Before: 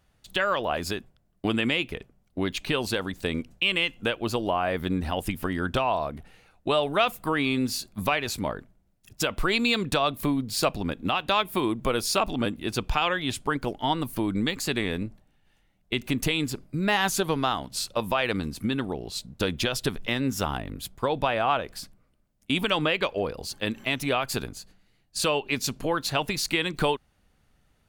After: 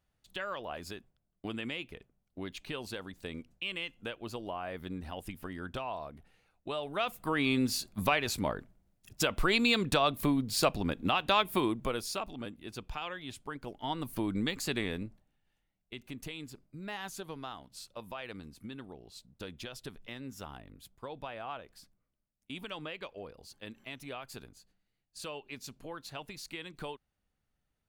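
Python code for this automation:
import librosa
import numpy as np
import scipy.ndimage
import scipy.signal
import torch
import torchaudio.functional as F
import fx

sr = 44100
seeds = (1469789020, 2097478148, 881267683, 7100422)

y = fx.gain(x, sr, db=fx.line((6.79, -13.0), (7.5, -3.0), (11.58, -3.0), (12.32, -14.5), (13.56, -14.5), (14.18, -6.0), (14.82, -6.0), (15.93, -17.0)))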